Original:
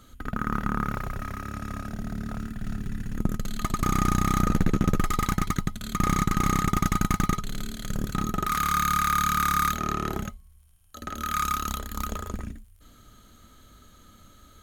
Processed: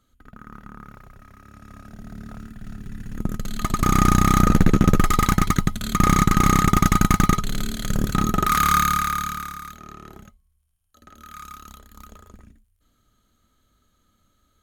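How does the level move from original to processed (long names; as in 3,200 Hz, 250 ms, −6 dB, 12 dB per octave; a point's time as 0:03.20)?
0:01.29 −14 dB
0:02.18 −4.5 dB
0:02.75 −4.5 dB
0:04.00 +7 dB
0:08.74 +7 dB
0:09.28 −3.5 dB
0:09.61 −13 dB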